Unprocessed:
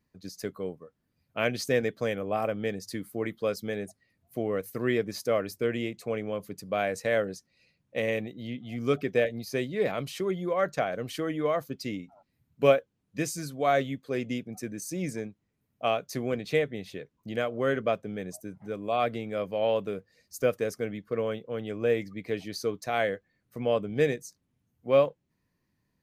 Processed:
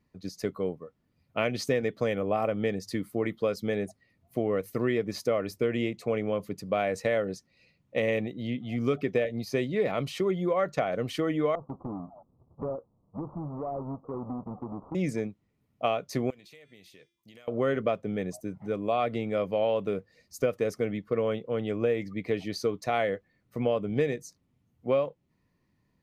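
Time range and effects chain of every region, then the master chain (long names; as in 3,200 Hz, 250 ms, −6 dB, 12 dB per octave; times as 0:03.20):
0:11.55–0:14.95: each half-wave held at its own peak + Butterworth low-pass 1,200 Hz 72 dB per octave + downward compressor 4 to 1, threshold −39 dBFS
0:16.30–0:17.48: first-order pre-emphasis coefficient 0.9 + hum removal 343 Hz, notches 27 + downward compressor 10 to 1, threshold −51 dBFS
whole clip: high-shelf EQ 5,500 Hz −10.5 dB; notch filter 1,600 Hz, Q 8.8; downward compressor 6 to 1, threshold −27 dBFS; level +4.5 dB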